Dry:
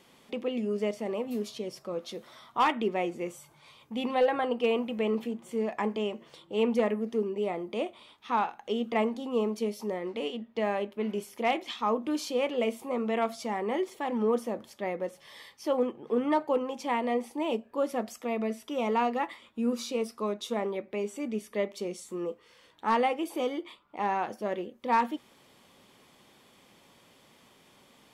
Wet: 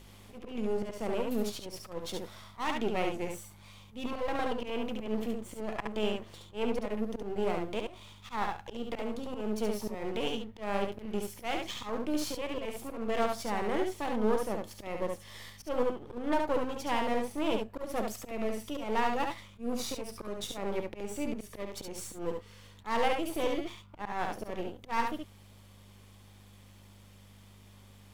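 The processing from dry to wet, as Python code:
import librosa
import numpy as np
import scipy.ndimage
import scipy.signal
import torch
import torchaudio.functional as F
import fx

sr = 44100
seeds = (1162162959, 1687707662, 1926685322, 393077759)

p1 = np.where(x < 0.0, 10.0 ** (-12.0 / 20.0) * x, x)
p2 = fx.high_shelf(p1, sr, hz=6800.0, db=5.5)
p3 = fx.rider(p2, sr, range_db=5, speed_s=0.5)
p4 = p2 + (p3 * librosa.db_to_amplitude(-0.5))
p5 = fx.add_hum(p4, sr, base_hz=50, snr_db=21)
p6 = fx.auto_swell(p5, sr, attack_ms=176.0)
p7 = p6 + fx.echo_single(p6, sr, ms=70, db=-4.0, dry=0)
y = p7 * librosa.db_to_amplitude(-5.0)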